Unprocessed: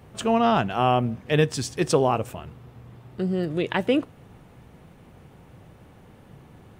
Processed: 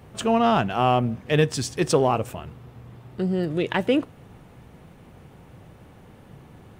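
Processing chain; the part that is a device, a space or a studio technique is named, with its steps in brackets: parallel distortion (in parallel at -13.5 dB: hard clip -25.5 dBFS, distortion -5 dB)

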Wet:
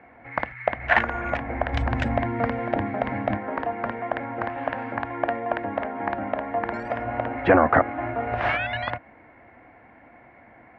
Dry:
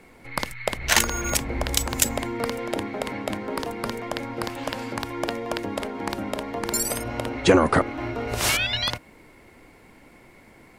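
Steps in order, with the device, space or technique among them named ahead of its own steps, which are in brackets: 1.73–3.37 tone controls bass +10 dB, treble +10 dB; bass cabinet (speaker cabinet 69–2200 Hz, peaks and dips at 170 Hz -8 dB, 400 Hz -8 dB, 710 Hz +10 dB, 1700 Hz +6 dB)

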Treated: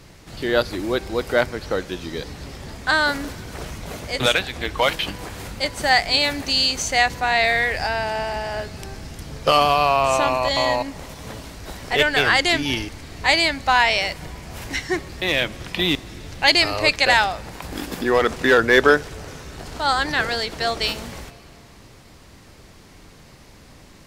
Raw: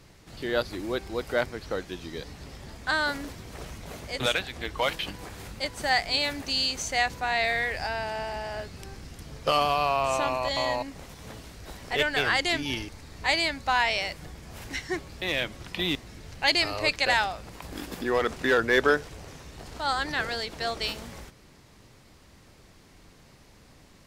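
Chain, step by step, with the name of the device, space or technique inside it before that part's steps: compressed reverb return (on a send at -11 dB: reverb RT60 2.1 s, pre-delay 23 ms + compressor, threshold -39 dBFS, peak gain reduction 18 dB); on the sum: gain +7.5 dB

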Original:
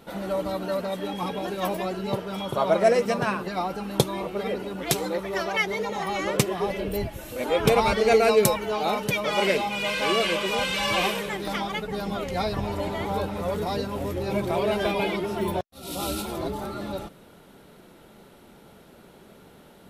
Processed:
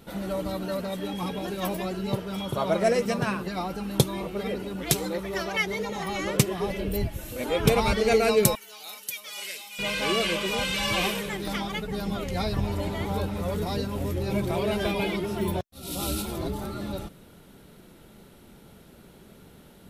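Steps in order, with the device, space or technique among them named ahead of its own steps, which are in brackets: smiley-face EQ (low shelf 160 Hz +7 dB; bell 780 Hz -4 dB 1.9 oct; high shelf 6700 Hz +4 dB); 8.55–9.79 differentiator; gain -1 dB

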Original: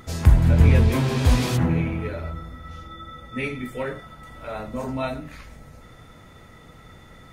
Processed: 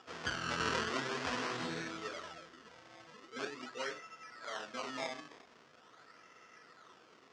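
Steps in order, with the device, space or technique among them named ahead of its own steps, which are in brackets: circuit-bent sampling toy (decimation with a swept rate 21×, swing 100% 0.43 Hz; speaker cabinet 560–5800 Hz, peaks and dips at 570 Hz -7 dB, 830 Hz -8 dB, 2300 Hz -4 dB, 3900 Hz -5 dB); gain -4.5 dB

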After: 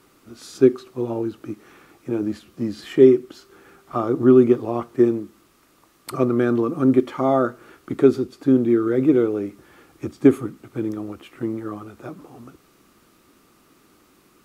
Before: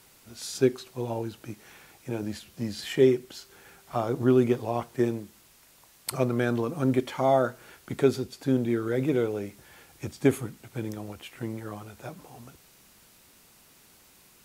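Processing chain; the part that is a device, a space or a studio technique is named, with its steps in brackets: inside a helmet (high shelf 3800 Hz -6.5 dB; small resonant body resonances 310/1200 Hz, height 12 dB, ringing for 20 ms)

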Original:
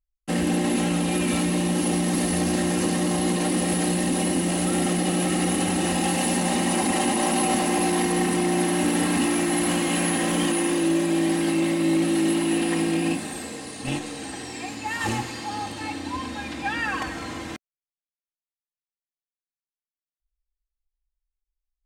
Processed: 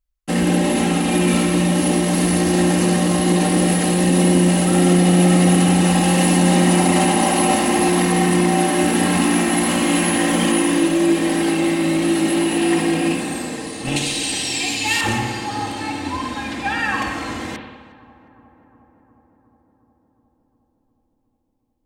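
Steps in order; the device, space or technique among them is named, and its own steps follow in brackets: 13.96–15.01 resonant high shelf 2100 Hz +10.5 dB, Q 1.5; dub delay into a spring reverb (darkening echo 0.36 s, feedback 77%, low-pass 1700 Hz, level -20 dB; spring tank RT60 1.2 s, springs 56 ms, chirp 40 ms, DRR 3.5 dB); gain +4.5 dB

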